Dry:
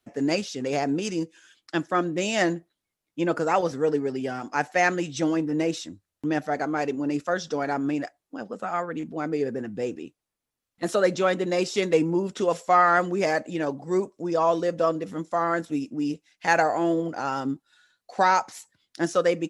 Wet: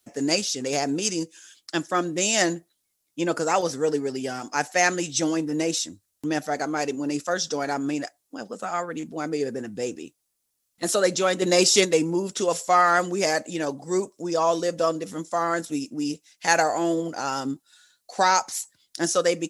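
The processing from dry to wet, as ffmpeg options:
ffmpeg -i in.wav -filter_complex "[0:a]asplit=3[link_01][link_02][link_03];[link_01]atrim=end=11.422[link_04];[link_02]atrim=start=11.418:end=11.852,asetpts=PTS-STARTPTS,volume=5dB[link_05];[link_03]atrim=start=11.848[link_06];[link_04][link_05]acrossfade=duration=0.004:curve1=hsin:curve2=hsin[link_07];[link_07][link_06]acrossfade=duration=0.004:curve1=hsin:curve2=hsin,bass=frequency=250:gain=-2,treble=frequency=4000:gain=14" out.wav

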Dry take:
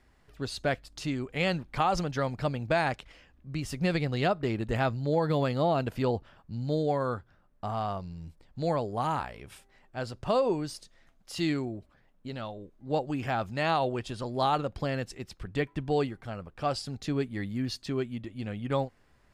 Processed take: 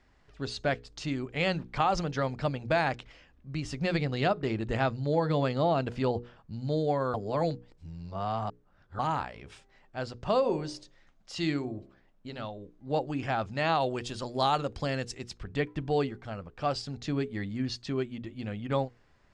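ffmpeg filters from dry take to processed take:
ffmpeg -i in.wav -filter_complex "[0:a]asplit=3[link_01][link_02][link_03];[link_01]afade=type=out:start_time=10.43:duration=0.02[link_04];[link_02]bandreject=frequency=66.95:width_type=h:width=4,bandreject=frequency=133.9:width_type=h:width=4,bandreject=frequency=200.85:width_type=h:width=4,bandreject=frequency=267.8:width_type=h:width=4,bandreject=frequency=334.75:width_type=h:width=4,bandreject=frequency=401.7:width_type=h:width=4,bandreject=frequency=468.65:width_type=h:width=4,bandreject=frequency=535.6:width_type=h:width=4,bandreject=frequency=602.55:width_type=h:width=4,bandreject=frequency=669.5:width_type=h:width=4,bandreject=frequency=736.45:width_type=h:width=4,bandreject=frequency=803.4:width_type=h:width=4,bandreject=frequency=870.35:width_type=h:width=4,bandreject=frequency=937.3:width_type=h:width=4,bandreject=frequency=1004.25:width_type=h:width=4,bandreject=frequency=1071.2:width_type=h:width=4,bandreject=frequency=1138.15:width_type=h:width=4,afade=type=in:start_time=10.43:duration=0.02,afade=type=out:start_time=12.45:duration=0.02[link_05];[link_03]afade=type=in:start_time=12.45:duration=0.02[link_06];[link_04][link_05][link_06]amix=inputs=3:normalize=0,asettb=1/sr,asplit=3[link_07][link_08][link_09];[link_07]atrim=end=13.804[link_10];[link_08]atrim=start=13.8:end=15.38,asetpts=PTS-STARTPTS,afade=type=in:duration=0.004:curve=qsin,afade=type=out:start_time=1.576:duration=0.004:curve=qsin,aemphasis=mode=production:type=50fm[link_11];[link_09]atrim=start=15.376[link_12];[link_10][link_11]acrossfade=duration=0.004:curve1=hsin:curve2=qsin[link_13];[link_13][link_12]acrossfade=duration=0.004:curve1=qsin:curve2=hsin,asplit=3[link_14][link_15][link_16];[link_14]atrim=end=7.142[link_17];[link_15]atrim=start=7.138:end=8.992,asetpts=PTS-STARTPTS,areverse[link_18];[link_16]atrim=start=8.988[link_19];[link_17][link_18]acrossfade=duration=0.004:curve1=hsin:curve2=hsin[link_20];[link_20][link_19]acrossfade=duration=0.004:curve1=hsin:curve2=hsin,lowpass=frequency=7300:width=0.5412,lowpass=frequency=7300:width=1.3066,bandreject=frequency=60:width_type=h:width=6,bandreject=frequency=120:width_type=h:width=6,bandreject=frequency=180:width_type=h:width=6,bandreject=frequency=240:width_type=h:width=6,bandreject=frequency=300:width_type=h:width=6,bandreject=frequency=360:width_type=h:width=6,bandreject=frequency=420:width_type=h:width=6,bandreject=frequency=480:width_type=h:width=6" out.wav

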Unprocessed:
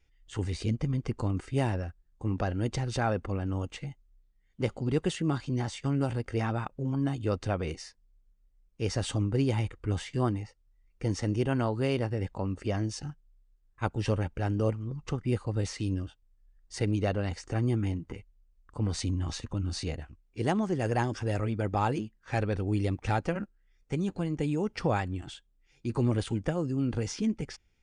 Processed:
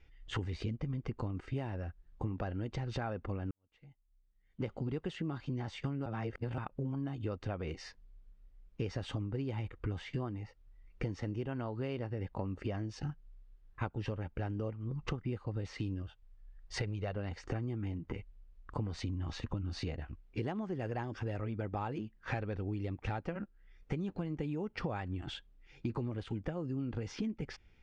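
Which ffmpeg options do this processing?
ffmpeg -i in.wav -filter_complex "[0:a]asettb=1/sr,asplit=3[link_01][link_02][link_03];[link_01]atrim=end=16.024[link_04];[link_02]atrim=start=16.02:end=17.16,asetpts=PTS-STARTPTS,afade=type=in:duration=0.004:curve=qsin,afade=type=out:start_time=1.136:duration=0.004:curve=qsin,equalizer=frequency=270:width_type=o:width=0.6:gain=-13[link_05];[link_03]atrim=start=17.156[link_06];[link_04][link_05]acrossfade=duration=0.004:curve1=hsin:curve2=qsin[link_07];[link_07][link_06]acrossfade=duration=0.004:curve1=qsin:curve2=hsin,asplit=4[link_08][link_09][link_10][link_11];[link_08]atrim=end=3.51,asetpts=PTS-STARTPTS,afade=type=out:start_time=3.506:duration=0.004:curve=hsin[link_12];[link_09]atrim=start=3.51:end=6.062,asetpts=PTS-STARTPTS,afade=type=in:duration=1.65:curve=qua[link_13];[link_10]atrim=start=6.058:end=6.582,asetpts=PTS-STARTPTS,areverse[link_14];[link_11]atrim=start=6.578[link_15];[link_12][link_13]concat=n=2:v=0:a=1[link_16];[link_16][link_14]acrossfade=duration=0.004:curve1=hsin:curve2=hsin[link_17];[link_17][link_15]acrossfade=duration=0.004:curve1=hsin:curve2=hsin,lowpass=3400,acompressor=threshold=-41dB:ratio=16,volume=7.5dB" out.wav

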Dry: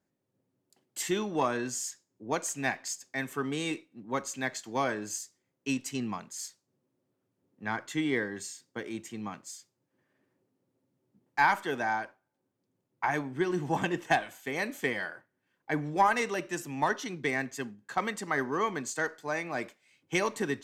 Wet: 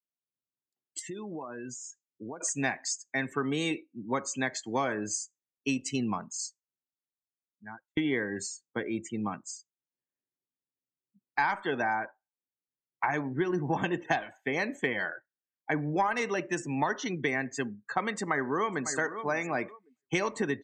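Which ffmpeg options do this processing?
ffmpeg -i in.wav -filter_complex "[0:a]asettb=1/sr,asplit=3[link_01][link_02][link_03];[link_01]atrim=end=0.994[link_04];[link_02]atrim=start=0.99:end=2.41,asetpts=PTS-STARTPTS,afade=type=in:duration=0.004:curve=qsin,afade=type=out:start_time=1.416:duration=0.004:curve=qsin,acompressor=threshold=-41dB:ratio=12:attack=3.2:release=140:knee=1:detection=peak[link_05];[link_03]atrim=start=2.406[link_06];[link_04][link_05]acrossfade=duration=0.004:curve1=hsin:curve2=qsin[link_07];[link_07][link_06]acrossfade=duration=0.004:curve1=qsin:curve2=hsin,asplit=2[link_08][link_09];[link_09]afade=type=in:start_time=18.1:duration=0.01,afade=type=out:start_time=18.91:duration=0.01,aecho=0:1:550|1100|1650:0.199526|0.0498816|0.0124704[link_10];[link_08][link_10]amix=inputs=2:normalize=0,asplit=2[link_11][link_12];[link_11]atrim=end=7.97,asetpts=PTS-STARTPTS,afade=type=out:start_time=6.38:duration=1.59[link_13];[link_12]atrim=start=7.97,asetpts=PTS-STARTPTS,afade=type=in:duration=0.004:curve=hsin[link_14];[link_13][link_14]concat=n=2:v=0:a=1,acrossover=split=9200[link_15][link_16];[link_16]acompressor=threshold=-59dB:ratio=4:attack=1:release=60[link_17];[link_15][link_17]amix=inputs=2:normalize=0,afftdn=noise_reduction=34:noise_floor=-46,acompressor=threshold=-33dB:ratio=3,volume=6dB" out.wav

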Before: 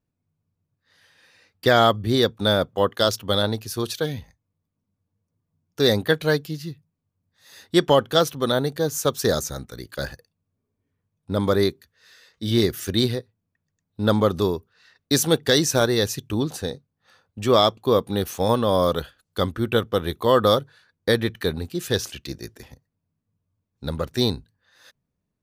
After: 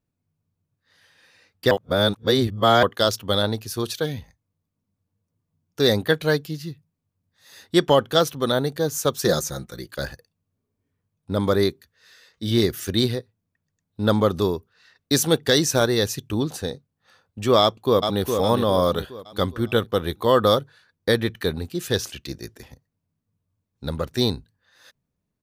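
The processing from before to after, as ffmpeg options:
ffmpeg -i in.wav -filter_complex "[0:a]asettb=1/sr,asplit=3[link_01][link_02][link_03];[link_01]atrim=end=9.224[link_04];[link_02]atrim=start=9.22:end=9.88,asetpts=PTS-STARTPTS,afade=type=in:duration=0.004:curve=qsin,afade=type=out:start_time=0.656:duration=0.004:curve=qsin,aecho=1:1:5.7:0.58,atrim=end_sample=29106[link_05];[link_03]atrim=start=9.876[link_06];[link_04][link_05]acrossfade=duration=0.004:curve1=hsin:curve2=qsin[link_07];[link_07][link_06]acrossfade=duration=0.004:curve1=qsin:curve2=hsin,asplit=2[link_08][link_09];[link_09]afade=type=in:start_time=17.61:duration=0.01,afade=type=out:start_time=18.22:duration=0.01,aecho=0:1:410|820|1230|1640|2050:0.530884|0.238898|0.107504|0.0483768|0.0217696[link_10];[link_08][link_10]amix=inputs=2:normalize=0,asplit=3[link_11][link_12][link_13];[link_11]atrim=end=1.712[link_14];[link_12]atrim=start=1.708:end=2.832,asetpts=PTS-STARTPTS,areverse[link_15];[link_13]atrim=start=2.828[link_16];[link_14][link_15]acrossfade=duration=0.004:curve1=hsin:curve2=hsin[link_17];[link_17][link_16]acrossfade=duration=0.004:curve1=hsin:curve2=hsin" out.wav

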